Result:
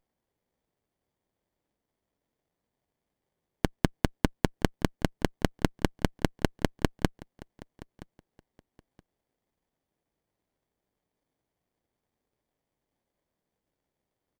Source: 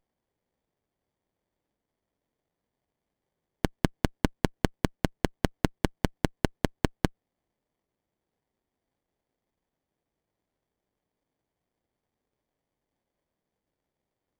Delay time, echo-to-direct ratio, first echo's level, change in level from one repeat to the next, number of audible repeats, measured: 972 ms, -21.0 dB, -21.0 dB, -13.0 dB, 2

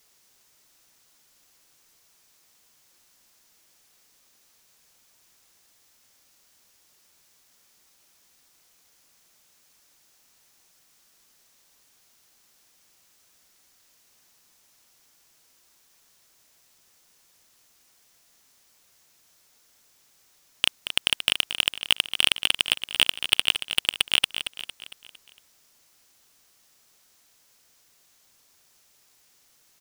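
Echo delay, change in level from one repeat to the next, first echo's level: 228 ms, -6.0 dB, -10.0 dB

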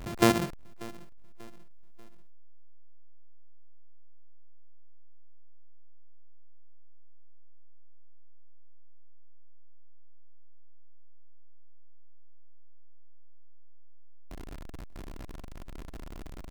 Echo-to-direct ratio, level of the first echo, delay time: -20.0 dB, -21.0 dB, 589 ms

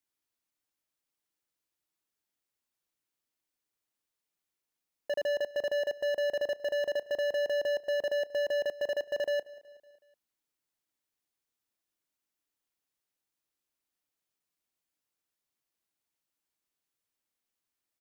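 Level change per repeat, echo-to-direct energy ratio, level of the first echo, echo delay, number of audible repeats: -5.0 dB, -19.0 dB, -20.5 dB, 186 ms, 3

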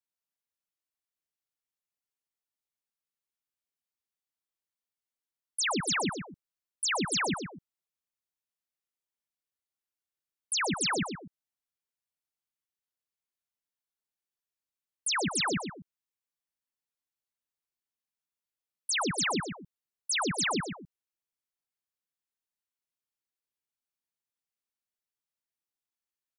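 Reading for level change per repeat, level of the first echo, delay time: -9.5 dB, -7.5 dB, 124 ms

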